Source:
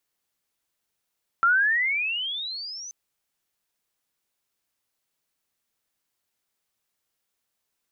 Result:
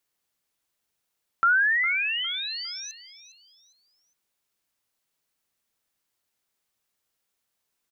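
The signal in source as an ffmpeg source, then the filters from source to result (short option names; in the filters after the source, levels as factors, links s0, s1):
-f lavfi -i "aevalsrc='pow(10,(-15.5-20*t/1.48)/20)*sin(2*PI*1340*1.48/(26.5*log(2)/12)*(exp(26.5*log(2)/12*t/1.48)-1))':d=1.48:s=44100"
-af "aecho=1:1:407|814|1221:0.178|0.0605|0.0206"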